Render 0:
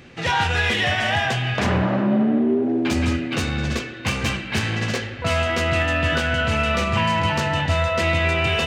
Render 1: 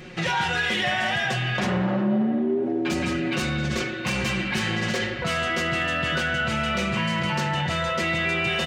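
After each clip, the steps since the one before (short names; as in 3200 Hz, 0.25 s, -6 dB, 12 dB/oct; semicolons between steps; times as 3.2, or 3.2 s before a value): comb 5.5 ms, depth 82%; in parallel at 0 dB: negative-ratio compressor -27 dBFS, ratio -1; on the sum: gain -8 dB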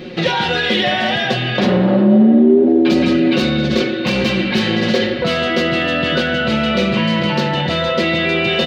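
graphic EQ 250/500/4000/8000 Hz +11/+10/+12/-10 dB; gain +2 dB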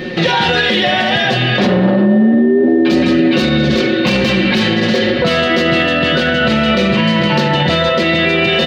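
limiter -11.5 dBFS, peak gain reduction 9.5 dB; whine 1800 Hz -37 dBFS; gain +7 dB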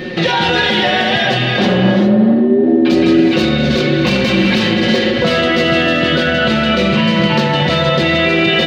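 non-linear reverb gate 0.43 s rising, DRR 6.5 dB; gain -1 dB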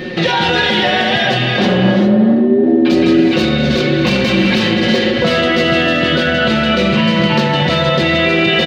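echo 0.344 s -23 dB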